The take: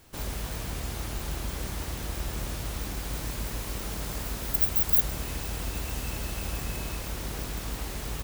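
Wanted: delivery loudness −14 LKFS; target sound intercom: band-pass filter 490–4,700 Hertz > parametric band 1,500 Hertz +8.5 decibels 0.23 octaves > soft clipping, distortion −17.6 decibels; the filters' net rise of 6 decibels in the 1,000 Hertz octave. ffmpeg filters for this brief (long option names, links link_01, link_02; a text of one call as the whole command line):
ffmpeg -i in.wav -af "highpass=490,lowpass=4700,equalizer=frequency=1000:width_type=o:gain=7,equalizer=frequency=1500:width_type=o:width=0.23:gain=8.5,asoftclip=threshold=-32.5dB,volume=25dB" out.wav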